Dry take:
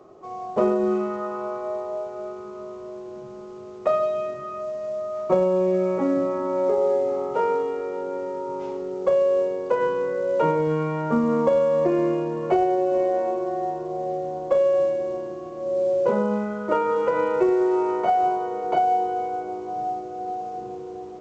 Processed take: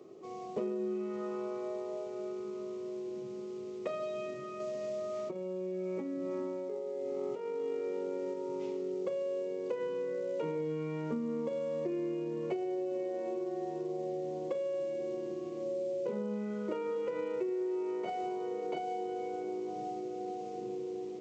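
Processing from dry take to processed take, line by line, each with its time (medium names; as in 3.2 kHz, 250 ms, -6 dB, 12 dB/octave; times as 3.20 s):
4.60–8.34 s: compressor with a negative ratio -28 dBFS
whole clip: high-pass 160 Hz 12 dB/octave; high-order bell 990 Hz -11 dB; compression 5:1, threshold -32 dBFS; trim -1.5 dB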